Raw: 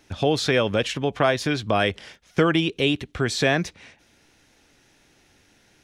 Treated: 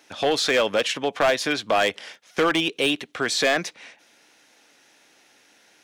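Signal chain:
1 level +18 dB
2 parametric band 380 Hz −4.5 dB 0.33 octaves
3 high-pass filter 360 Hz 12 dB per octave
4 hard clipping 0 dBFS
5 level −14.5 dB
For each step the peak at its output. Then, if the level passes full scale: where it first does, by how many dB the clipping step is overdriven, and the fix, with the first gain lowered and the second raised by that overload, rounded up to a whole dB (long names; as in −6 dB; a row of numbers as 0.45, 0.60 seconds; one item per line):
+11.0, +11.5, +9.5, 0.0, −14.5 dBFS
step 1, 9.5 dB
step 1 +8 dB, step 5 −4.5 dB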